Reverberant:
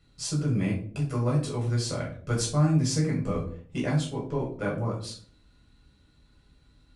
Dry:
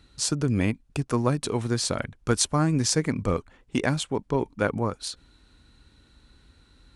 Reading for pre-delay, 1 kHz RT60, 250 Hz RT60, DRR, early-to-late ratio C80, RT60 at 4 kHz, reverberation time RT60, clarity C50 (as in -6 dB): 5 ms, 0.45 s, 0.70 s, -4.0 dB, 11.0 dB, 0.35 s, 0.50 s, 7.0 dB